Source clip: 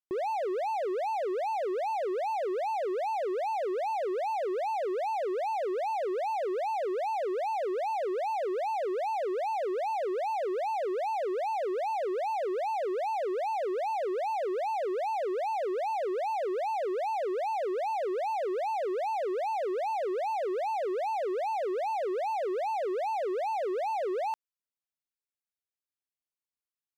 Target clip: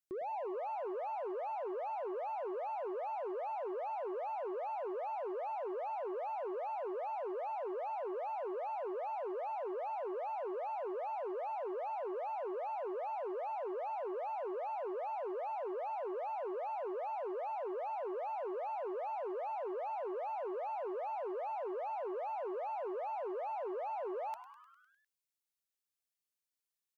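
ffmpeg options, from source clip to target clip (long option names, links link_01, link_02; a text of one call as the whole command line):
ffmpeg -i in.wav -filter_complex "[0:a]highshelf=frequency=2800:gain=8,asoftclip=type=tanh:threshold=-32.5dB,asplit=8[link_01][link_02][link_03][link_04][link_05][link_06][link_07][link_08];[link_02]adelay=101,afreqshift=120,volume=-13dB[link_09];[link_03]adelay=202,afreqshift=240,volume=-17.2dB[link_10];[link_04]adelay=303,afreqshift=360,volume=-21.3dB[link_11];[link_05]adelay=404,afreqshift=480,volume=-25.5dB[link_12];[link_06]adelay=505,afreqshift=600,volume=-29.6dB[link_13];[link_07]adelay=606,afreqshift=720,volume=-33.8dB[link_14];[link_08]adelay=707,afreqshift=840,volume=-37.9dB[link_15];[link_01][link_09][link_10][link_11][link_12][link_13][link_14][link_15]amix=inputs=8:normalize=0,volume=-4.5dB" out.wav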